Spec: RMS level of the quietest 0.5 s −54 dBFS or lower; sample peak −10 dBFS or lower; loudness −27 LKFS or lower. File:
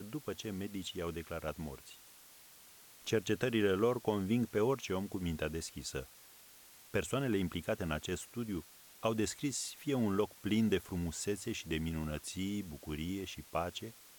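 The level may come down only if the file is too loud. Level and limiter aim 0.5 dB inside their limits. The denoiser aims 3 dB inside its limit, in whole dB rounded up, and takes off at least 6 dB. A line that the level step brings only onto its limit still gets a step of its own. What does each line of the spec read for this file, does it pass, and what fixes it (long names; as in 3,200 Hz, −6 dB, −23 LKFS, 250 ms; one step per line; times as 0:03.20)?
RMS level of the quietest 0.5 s −58 dBFS: in spec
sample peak −19.0 dBFS: in spec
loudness −37.0 LKFS: in spec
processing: no processing needed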